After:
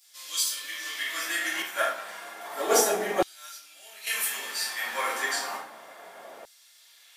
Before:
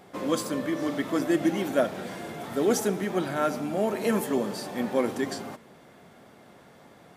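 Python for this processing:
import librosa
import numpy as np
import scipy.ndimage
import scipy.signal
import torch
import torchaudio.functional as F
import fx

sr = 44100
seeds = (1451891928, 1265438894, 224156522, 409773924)

y = fx.high_shelf(x, sr, hz=7300.0, db=7.5)
y = fx.room_shoebox(y, sr, seeds[0], volume_m3=120.0, walls='mixed', distance_m=2.4)
y = fx.filter_lfo_highpass(y, sr, shape='saw_down', hz=0.31, low_hz=540.0, high_hz=5000.0, q=1.4)
y = fx.upward_expand(y, sr, threshold_db=-37.0, expansion=1.5, at=(1.62, 4.07))
y = y * 10.0 ** (-2.5 / 20.0)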